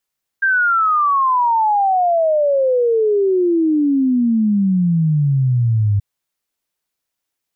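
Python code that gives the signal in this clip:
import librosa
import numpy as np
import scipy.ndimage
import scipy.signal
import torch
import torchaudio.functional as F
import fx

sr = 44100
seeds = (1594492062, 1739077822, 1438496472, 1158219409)

y = fx.ess(sr, length_s=5.58, from_hz=1600.0, to_hz=99.0, level_db=-12.0)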